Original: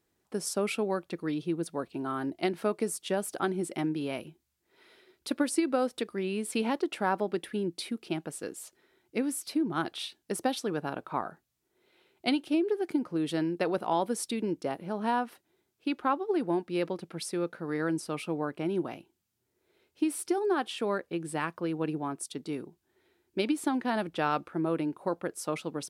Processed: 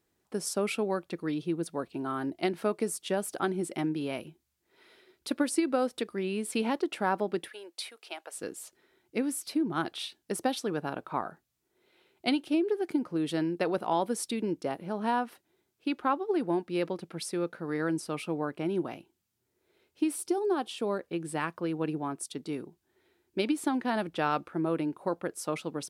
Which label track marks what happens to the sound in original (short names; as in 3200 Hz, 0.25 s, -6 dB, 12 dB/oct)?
7.480000	8.360000	HPF 570 Hz 24 dB/oct
20.160000	21.000000	bell 1800 Hz -8 dB 1.1 oct